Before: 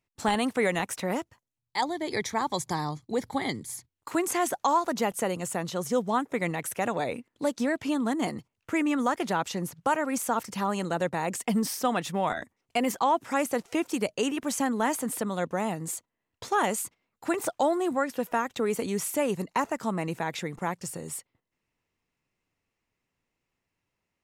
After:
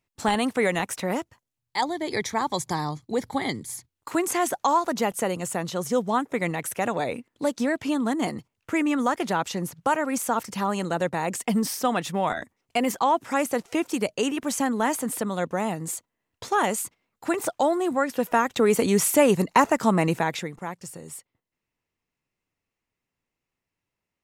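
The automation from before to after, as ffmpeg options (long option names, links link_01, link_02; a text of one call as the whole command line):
ffmpeg -i in.wav -af "volume=9dB,afade=type=in:start_time=17.91:duration=1.02:silence=0.473151,afade=type=out:start_time=20.07:duration=0.48:silence=0.251189" out.wav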